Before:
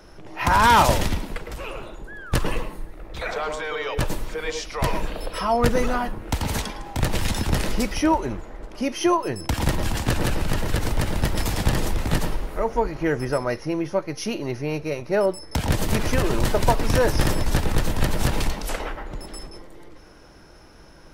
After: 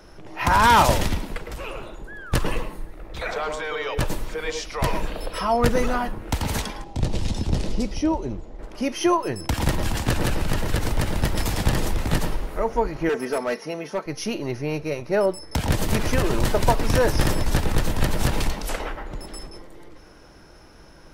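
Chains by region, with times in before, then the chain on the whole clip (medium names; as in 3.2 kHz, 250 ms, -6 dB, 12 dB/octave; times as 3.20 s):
6.84–8.59 s: low-pass 5.8 kHz + peaking EQ 1.6 kHz -13 dB 1.9 oct
13.09–14.06 s: high-pass 240 Hz + comb 4.5 ms, depth 67% + hard clipper -19 dBFS
whole clip: none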